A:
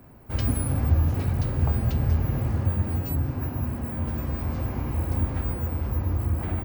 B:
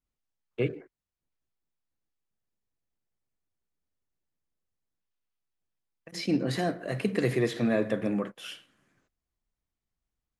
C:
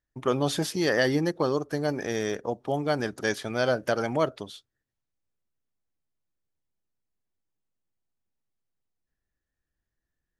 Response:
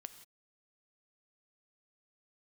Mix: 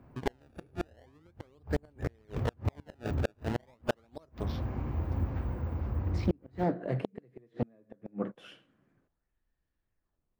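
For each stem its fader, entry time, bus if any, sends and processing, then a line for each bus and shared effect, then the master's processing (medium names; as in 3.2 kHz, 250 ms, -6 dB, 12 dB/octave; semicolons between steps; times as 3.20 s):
-6.0 dB, 0.00 s, no send, none
-3.0 dB, 0.00 s, no send, tilt shelf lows +5.5 dB
0.0 dB, 0.00 s, no send, decimation with a swept rate 24×, swing 160% 0.39 Hz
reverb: none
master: low-pass 2.3 kHz 6 dB/octave; inverted gate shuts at -17 dBFS, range -36 dB; loudspeaker Doppler distortion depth 0.42 ms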